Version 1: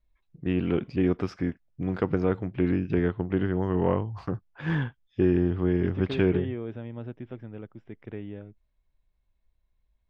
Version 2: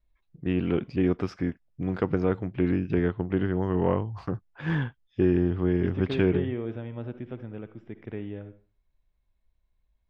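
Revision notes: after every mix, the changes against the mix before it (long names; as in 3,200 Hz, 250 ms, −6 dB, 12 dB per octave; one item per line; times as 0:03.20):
reverb: on, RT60 0.40 s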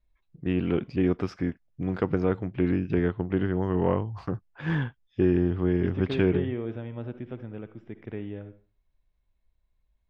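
nothing changed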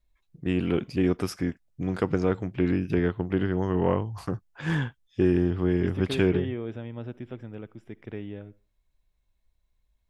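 second voice: send −10.5 dB
master: remove high-frequency loss of the air 200 metres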